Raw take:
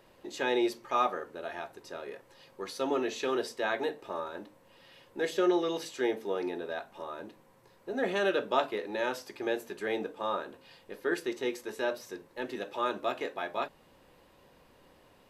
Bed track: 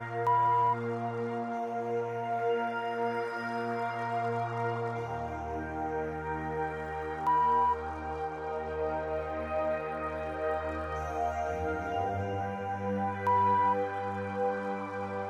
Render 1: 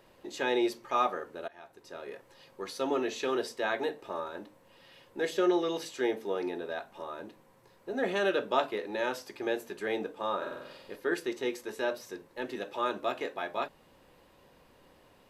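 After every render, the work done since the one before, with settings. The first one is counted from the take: 1.48–2.13 fade in, from -19.5 dB; 10.37–10.96 flutter echo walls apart 8 m, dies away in 1 s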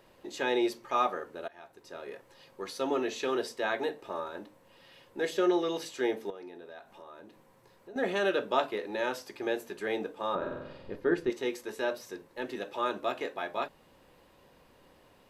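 6.3–7.96 compressor 2:1, threshold -52 dBFS; 10.35–11.3 RIAA curve playback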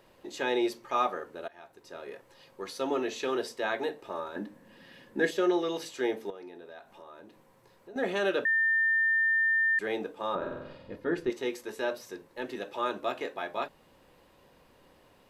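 4.36–5.31 small resonant body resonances 220/1700 Hz, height 13 dB, ringing for 25 ms; 8.45–9.79 bleep 1800 Hz -22.5 dBFS; 10.75–11.16 notch comb 390 Hz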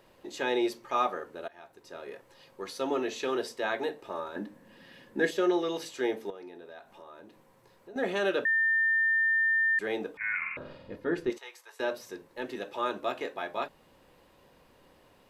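10.17–10.57 inverted band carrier 2700 Hz; 11.38–11.8 ladder high-pass 700 Hz, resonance 30%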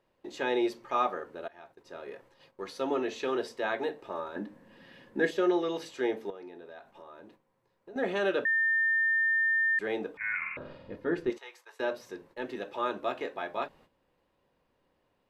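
gate -56 dBFS, range -13 dB; high shelf 5600 Hz -10 dB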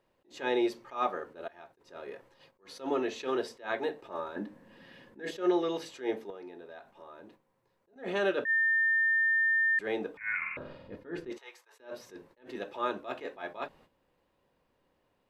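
attack slew limiter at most 190 dB/s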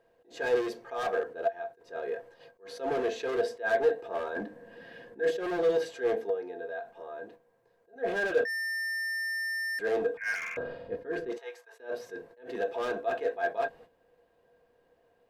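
overloaded stage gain 34 dB; small resonant body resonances 480/680/1600 Hz, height 18 dB, ringing for 85 ms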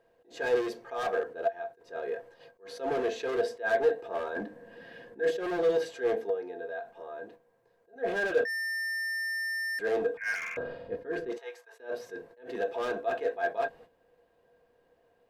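nothing audible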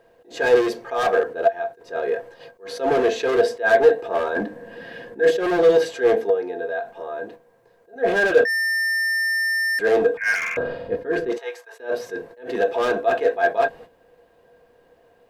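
gain +11 dB

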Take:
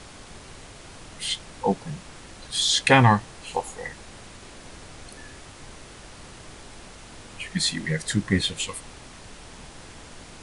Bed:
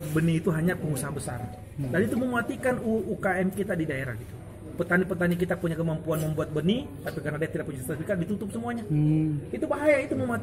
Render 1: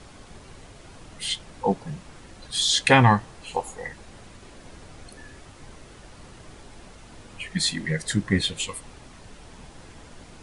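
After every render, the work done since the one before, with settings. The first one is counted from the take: denoiser 6 dB, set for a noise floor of -45 dBFS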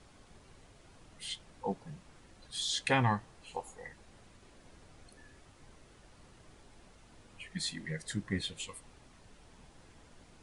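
gain -12.5 dB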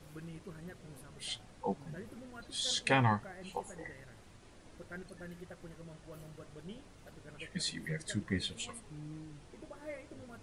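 add bed -23.5 dB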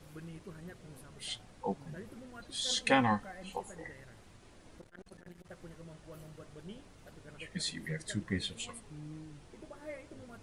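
2.69–3.56 comb 3.9 ms; 4.79–5.5 core saturation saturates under 490 Hz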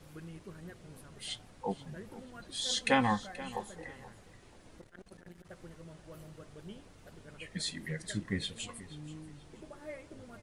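feedback echo 0.48 s, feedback 26%, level -17 dB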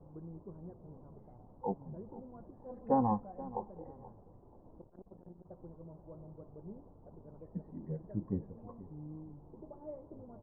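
elliptic low-pass 960 Hz, stop band 70 dB

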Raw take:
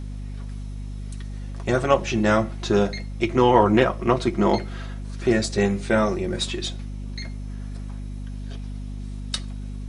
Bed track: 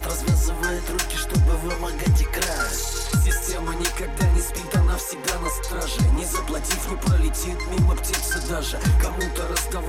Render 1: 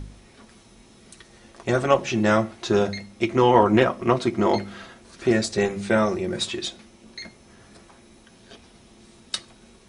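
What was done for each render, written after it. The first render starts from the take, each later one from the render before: de-hum 50 Hz, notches 5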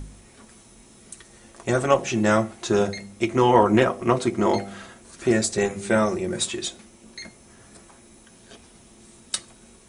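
resonant high shelf 6100 Hz +6.5 dB, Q 1.5; de-hum 98.65 Hz, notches 8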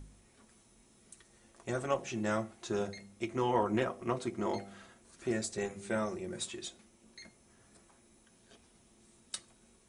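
gain -13.5 dB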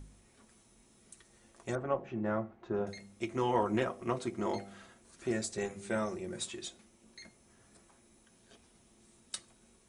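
1.75–2.87 LPF 1400 Hz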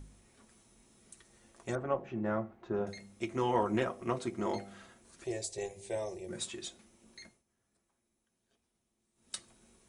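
5.24–6.29 fixed phaser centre 560 Hz, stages 4; 7.22–9.36 dip -17.5 dB, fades 0.21 s

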